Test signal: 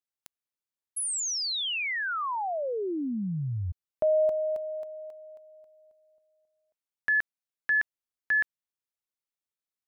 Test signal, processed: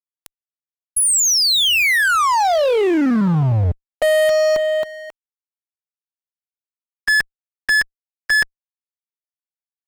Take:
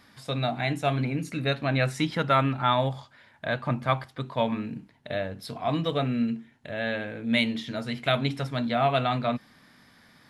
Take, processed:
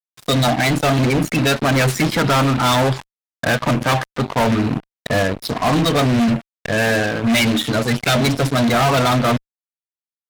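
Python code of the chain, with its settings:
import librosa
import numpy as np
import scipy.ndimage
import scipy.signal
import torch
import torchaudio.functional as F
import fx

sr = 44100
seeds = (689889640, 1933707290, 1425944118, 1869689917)

y = fx.spec_quant(x, sr, step_db=30)
y = fx.fuzz(y, sr, gain_db=34.0, gate_db=-41.0)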